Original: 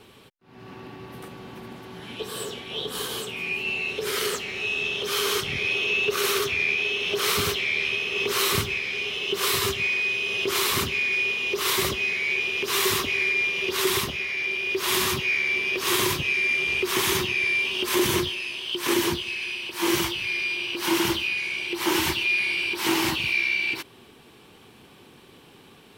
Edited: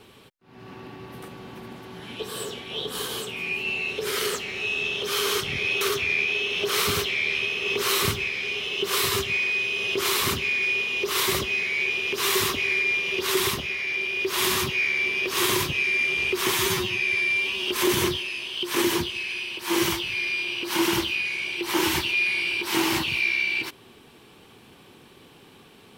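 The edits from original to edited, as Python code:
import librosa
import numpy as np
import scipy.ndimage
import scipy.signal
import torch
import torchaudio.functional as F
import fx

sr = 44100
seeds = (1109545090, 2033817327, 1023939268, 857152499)

y = fx.edit(x, sr, fx.cut(start_s=5.81, length_s=0.5),
    fx.stretch_span(start_s=17.04, length_s=0.76, factor=1.5), tone=tone)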